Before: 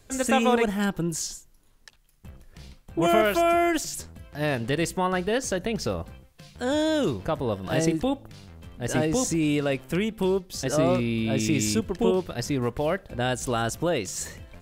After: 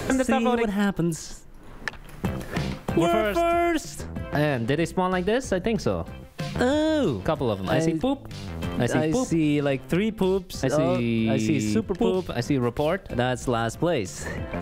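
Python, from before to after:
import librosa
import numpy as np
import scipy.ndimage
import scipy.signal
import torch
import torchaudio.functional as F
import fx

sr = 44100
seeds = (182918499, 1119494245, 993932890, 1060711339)

y = fx.high_shelf(x, sr, hz=3100.0, db=-7.5)
y = fx.band_squash(y, sr, depth_pct=100)
y = y * librosa.db_to_amplitude(1.5)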